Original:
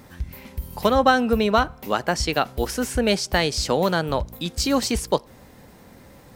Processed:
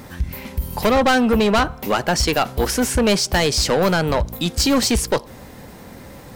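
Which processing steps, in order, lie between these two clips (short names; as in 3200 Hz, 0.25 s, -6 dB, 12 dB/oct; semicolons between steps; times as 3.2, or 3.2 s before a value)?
soft clip -20.5 dBFS, distortion -8 dB; gain +8.5 dB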